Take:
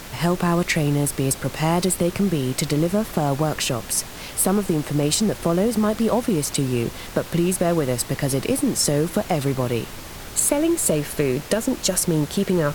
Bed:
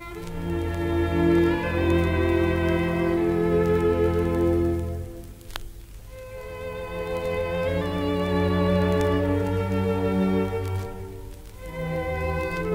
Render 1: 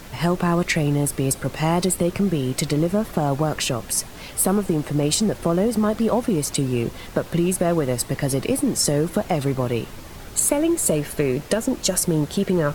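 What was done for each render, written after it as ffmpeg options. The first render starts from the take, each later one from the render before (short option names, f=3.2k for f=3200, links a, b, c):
-af "afftdn=nr=6:nf=-37"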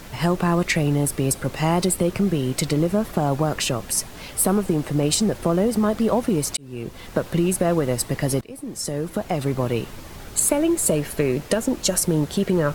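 -filter_complex "[0:a]asplit=3[a][b][c];[a]atrim=end=6.57,asetpts=PTS-STARTPTS,afade=t=out:st=6.566:d=0.004:c=hsin[d];[b]atrim=start=6.57:end=8.41,asetpts=PTS-STARTPTS,afade=t=in:d=0.61,afade=t=out:st=1.836:d=0.004:c=hsin:silence=0.0707946[e];[c]atrim=start=8.41,asetpts=PTS-STARTPTS,afade=t=in:d=1.23:silence=0.0707946[f];[d][e][f]concat=n=3:v=0:a=1"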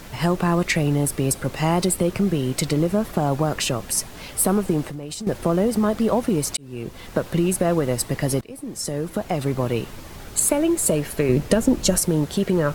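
-filter_complex "[0:a]asettb=1/sr,asplit=3[a][b][c];[a]atrim=end=4.844[d];[b]atrim=start=4.84:end=5.27,asetpts=PTS-STARTPTS,afade=t=in:d=0.004:c=qsin,afade=t=out:st=0.426:d=0.004:c=qsin,acompressor=threshold=-29dB:ratio=6:attack=3.2:release=140:knee=1:detection=peak[e];[c]atrim=start=5.266[f];[d][e]acrossfade=d=0.004:c1=hsin:c2=qsin[g];[g][f]acrossfade=d=0.004:c1=qsin:c2=hsin,asettb=1/sr,asplit=3[h][i][j];[h]atrim=end=11.294[k];[i]atrim=start=11.29:end=11.98,asetpts=PTS-STARTPTS,afade=t=in:d=0.004:c=qsin,afade=t=out:st=0.686:d=0.004:c=qsin,lowshelf=f=290:g=9[l];[j]atrim=start=11.976[m];[k][l]acrossfade=d=0.004:c1=hsin:c2=qsin[n];[n][m]acrossfade=d=0.004:c1=qsin:c2=hsin"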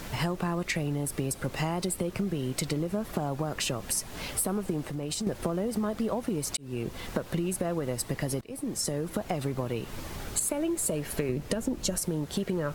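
-af "acompressor=threshold=-27dB:ratio=6"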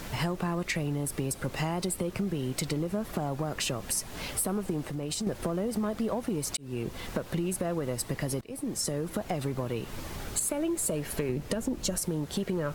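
-af "asoftclip=type=tanh:threshold=-18dB"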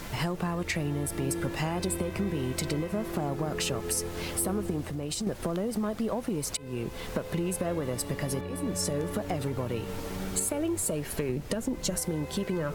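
-filter_complex "[1:a]volume=-15dB[a];[0:a][a]amix=inputs=2:normalize=0"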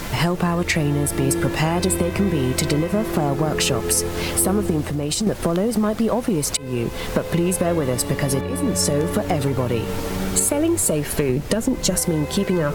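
-af "volume=10.5dB"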